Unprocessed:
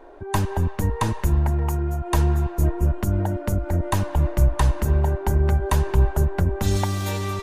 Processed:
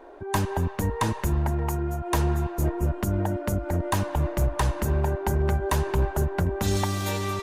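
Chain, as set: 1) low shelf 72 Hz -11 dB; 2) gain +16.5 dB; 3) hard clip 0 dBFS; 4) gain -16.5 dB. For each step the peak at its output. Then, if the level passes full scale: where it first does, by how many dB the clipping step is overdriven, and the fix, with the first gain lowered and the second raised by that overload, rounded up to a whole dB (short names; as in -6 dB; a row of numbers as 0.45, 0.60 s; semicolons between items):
-8.0, +8.5, 0.0, -16.5 dBFS; step 2, 8.5 dB; step 2 +7.5 dB, step 4 -7.5 dB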